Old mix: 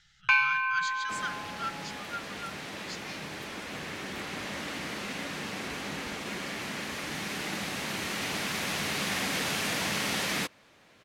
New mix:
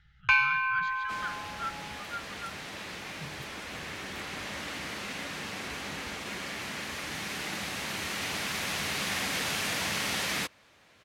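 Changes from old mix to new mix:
speech: add low-pass 2.2 kHz 12 dB/octave; second sound: add bass shelf 360 Hz -10 dB; master: add peaking EQ 67 Hz +12.5 dB 2.1 oct

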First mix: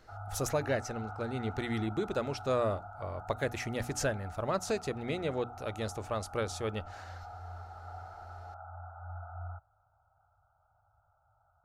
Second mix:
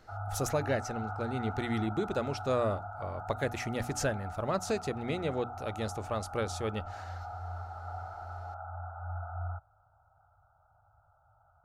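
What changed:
background +4.5 dB; master: add peaking EQ 190 Hz +2.5 dB 1.2 oct

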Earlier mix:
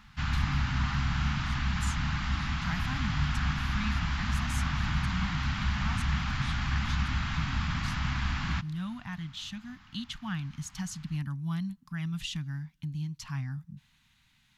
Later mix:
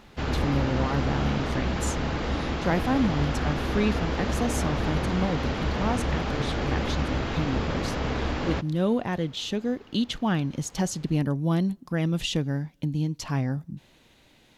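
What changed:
speech +6.5 dB; master: remove Chebyshev band-stop 170–1200 Hz, order 2

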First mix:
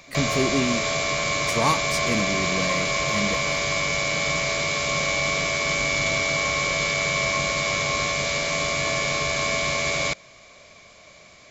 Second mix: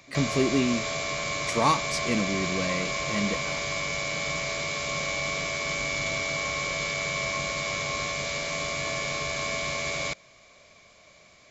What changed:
speech: add band-pass 110–7200 Hz; background -6.0 dB

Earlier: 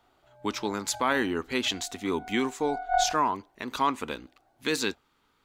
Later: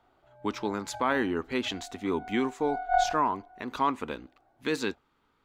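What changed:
speech: add treble shelf 3.2 kHz -11 dB; reverb: on, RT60 1.8 s

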